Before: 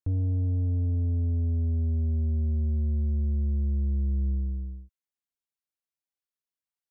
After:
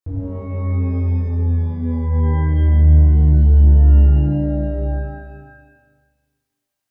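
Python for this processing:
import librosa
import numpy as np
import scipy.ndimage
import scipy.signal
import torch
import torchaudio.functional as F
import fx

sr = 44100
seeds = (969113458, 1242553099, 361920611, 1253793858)

y = fx.rider(x, sr, range_db=10, speed_s=0.5)
y = fx.rev_shimmer(y, sr, seeds[0], rt60_s=1.5, semitones=12, shimmer_db=-8, drr_db=-9.5)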